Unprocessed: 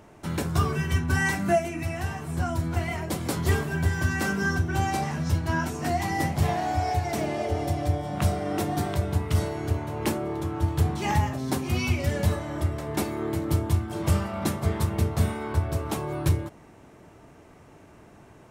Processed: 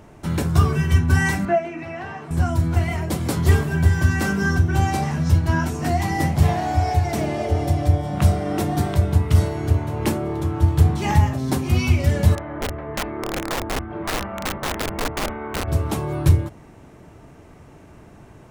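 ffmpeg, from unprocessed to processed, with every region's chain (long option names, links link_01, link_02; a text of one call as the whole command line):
ffmpeg -i in.wav -filter_complex "[0:a]asettb=1/sr,asplit=3[link_01][link_02][link_03];[link_01]atrim=end=1.454[link_04];[link_02]atrim=start=1.45:end=2.31,asetpts=PTS-STARTPTS,afade=type=in:duration=0.004:curve=qsin,afade=type=out:start_time=0.856:duration=0.004:curve=qsin,highpass=frequency=110:width=0.5412,highpass=frequency=110:width=1.3066,acrossover=split=2700[link_05][link_06];[link_06]acompressor=threshold=-53dB:ratio=4:attack=1:release=60[link_07];[link_05][link_07]amix=inputs=2:normalize=0,acrossover=split=290 5900:gain=0.251 1 0.126[link_08][link_09][link_10];[link_08][link_09][link_10]amix=inputs=3:normalize=0[link_11];[link_03]atrim=start=2.306[link_12];[link_04][link_11]acrossfade=duration=0.004:curve1=hsin:curve2=qsin[link_13];[link_13][link_12]acrossfade=duration=0.004:curve1=qsin:curve2=hsin,asettb=1/sr,asplit=3[link_14][link_15][link_16];[link_14]atrim=end=12.354[link_17];[link_15]atrim=start=12.35:end=15.68,asetpts=PTS-STARTPTS,afade=type=in:duration=0.004:curve=qsin,afade=type=out:start_time=3.326:duration=0.004:curve=qsin,lowpass=frequency=2200:width=0.5412,lowpass=frequency=2200:width=1.3066,aeval=exprs='(mod(11.9*val(0)+1,2)-1)/11.9':channel_layout=same,equalizer=frequency=110:width=0.61:gain=-10[link_18];[link_16]atrim=start=15.676[link_19];[link_17][link_18]acrossfade=duration=0.004:curve1=hsin:curve2=qsin[link_20];[link_20][link_19]acrossfade=duration=0.004:curve1=qsin:curve2=hsin,lowshelf=frequency=150:gain=8.5,bandreject=frequency=50:width_type=h:width=6,bandreject=frequency=100:width_type=h:width=6,volume=3dB" out.wav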